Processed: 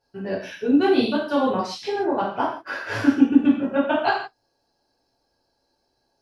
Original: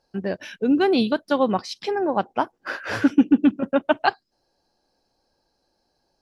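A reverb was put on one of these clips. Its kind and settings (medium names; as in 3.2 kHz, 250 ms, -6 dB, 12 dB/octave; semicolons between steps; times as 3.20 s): gated-style reverb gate 200 ms falling, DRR -7.5 dB; trim -8 dB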